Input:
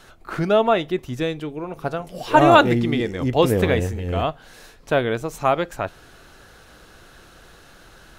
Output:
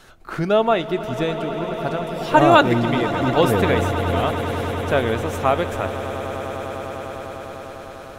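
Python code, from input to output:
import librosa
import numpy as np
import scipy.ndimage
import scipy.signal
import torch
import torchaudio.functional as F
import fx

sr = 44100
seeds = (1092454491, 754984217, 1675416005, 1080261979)

y = fx.echo_swell(x, sr, ms=100, loudest=8, wet_db=-16)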